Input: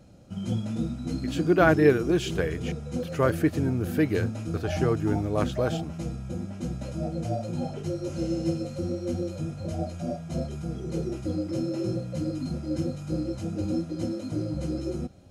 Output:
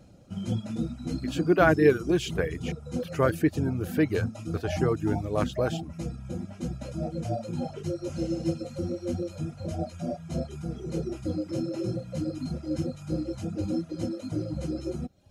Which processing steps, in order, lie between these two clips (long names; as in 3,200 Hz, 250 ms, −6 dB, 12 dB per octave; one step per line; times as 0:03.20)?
reverb reduction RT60 0.65 s